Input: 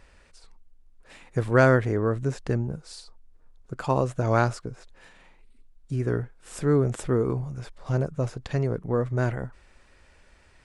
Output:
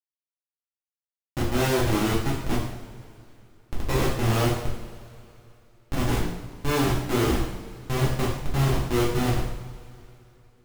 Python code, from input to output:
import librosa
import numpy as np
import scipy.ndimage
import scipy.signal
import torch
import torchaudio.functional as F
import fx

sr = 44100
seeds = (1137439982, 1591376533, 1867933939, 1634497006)

y = fx.env_lowpass_down(x, sr, base_hz=2000.0, full_db=-19.0)
y = fx.schmitt(y, sr, flips_db=-23.5)
y = fx.rev_double_slope(y, sr, seeds[0], early_s=0.72, late_s=3.1, knee_db=-18, drr_db=-6.5)